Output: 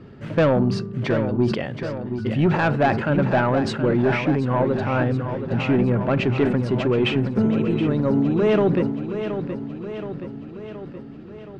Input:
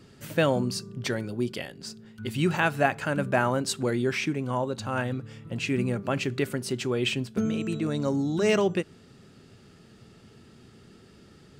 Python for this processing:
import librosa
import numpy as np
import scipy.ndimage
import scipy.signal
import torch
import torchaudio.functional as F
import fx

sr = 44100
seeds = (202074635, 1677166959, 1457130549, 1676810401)

p1 = scipy.signal.sosfilt(scipy.signal.butter(2, 3100.0, 'lowpass', fs=sr, output='sos'), x)
p2 = fx.high_shelf(p1, sr, hz=2100.0, db=-11.5)
p3 = fx.rider(p2, sr, range_db=10, speed_s=2.0)
p4 = p2 + F.gain(torch.from_numpy(p3), 0.5).numpy()
p5 = 10.0 ** (-13.5 / 20.0) * np.tanh(p4 / 10.0 ** (-13.5 / 20.0))
p6 = fx.echo_feedback(p5, sr, ms=723, feedback_pct=59, wet_db=-9.0)
p7 = fx.sustainer(p6, sr, db_per_s=64.0)
y = F.gain(torch.from_numpy(p7), 2.0).numpy()